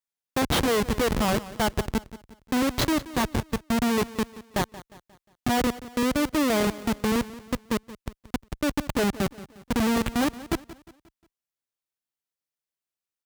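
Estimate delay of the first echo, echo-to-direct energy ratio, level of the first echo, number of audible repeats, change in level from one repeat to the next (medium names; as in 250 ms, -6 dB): 178 ms, -16.0 dB, -17.0 dB, 3, -7.0 dB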